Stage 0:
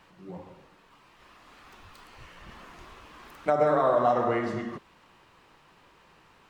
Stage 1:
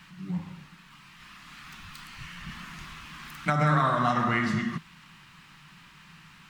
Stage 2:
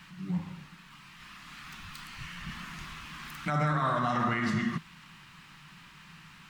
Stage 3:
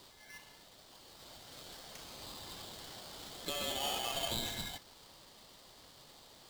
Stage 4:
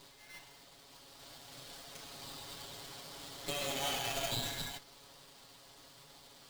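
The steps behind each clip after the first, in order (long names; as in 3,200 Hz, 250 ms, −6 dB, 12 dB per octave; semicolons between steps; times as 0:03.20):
drawn EQ curve 110 Hz 0 dB, 160 Hz +12 dB, 480 Hz −18 dB, 1,300 Hz +2 dB, 2,100 Hz +5 dB; level +4 dB
brickwall limiter −20 dBFS, peak gain reduction 8.5 dB
resonant band-pass 2,800 Hz, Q 0.67; ring modulator with a square carrier 1,900 Hz; level −2.5 dB
lower of the sound and its delayed copy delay 7.2 ms; level +2 dB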